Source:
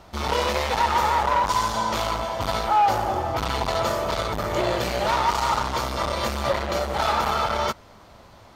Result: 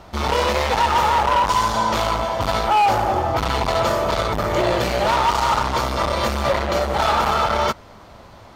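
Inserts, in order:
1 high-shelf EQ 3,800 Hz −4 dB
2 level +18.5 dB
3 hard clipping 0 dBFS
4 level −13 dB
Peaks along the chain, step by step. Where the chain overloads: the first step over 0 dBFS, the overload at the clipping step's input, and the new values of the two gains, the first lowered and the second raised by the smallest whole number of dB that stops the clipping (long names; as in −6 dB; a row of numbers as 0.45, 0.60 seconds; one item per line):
−12.0, +6.5, 0.0, −13.0 dBFS
step 2, 6.5 dB
step 2 +11.5 dB, step 4 −6 dB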